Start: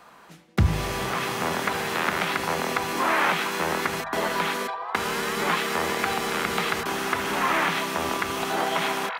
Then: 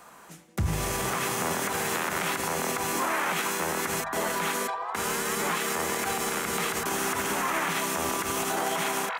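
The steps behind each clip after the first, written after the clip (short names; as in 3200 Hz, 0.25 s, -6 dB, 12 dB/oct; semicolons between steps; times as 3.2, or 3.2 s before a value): resonant high shelf 5600 Hz +7 dB, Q 1.5; limiter -18.5 dBFS, peak gain reduction 9.5 dB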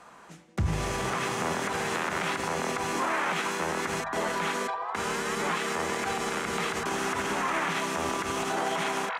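air absorption 67 m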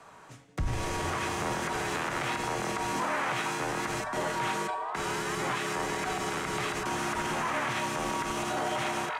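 frequency shift -42 Hz; in parallel at -9 dB: hard clip -31.5 dBFS, distortion -8 dB; on the sum: resonator 86 Hz, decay 0.68 s, harmonics odd, mix 60%; gain +3.5 dB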